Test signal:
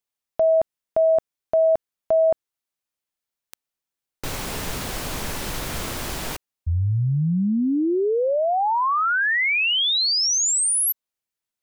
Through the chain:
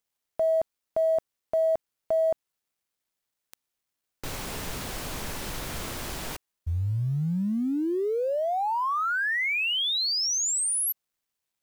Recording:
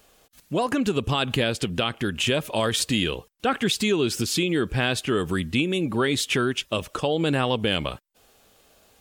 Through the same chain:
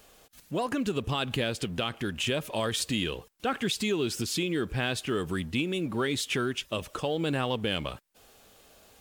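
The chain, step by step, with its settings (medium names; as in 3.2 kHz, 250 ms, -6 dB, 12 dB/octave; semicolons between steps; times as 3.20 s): companding laws mixed up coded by mu; trim -6.5 dB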